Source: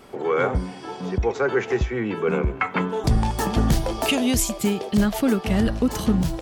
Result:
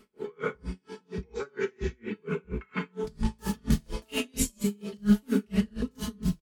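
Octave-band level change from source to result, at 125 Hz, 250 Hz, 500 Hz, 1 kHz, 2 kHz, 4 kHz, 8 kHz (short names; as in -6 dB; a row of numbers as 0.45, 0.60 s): -9.5, -7.0, -11.0, -16.0, -11.0, -10.5, -8.0 dB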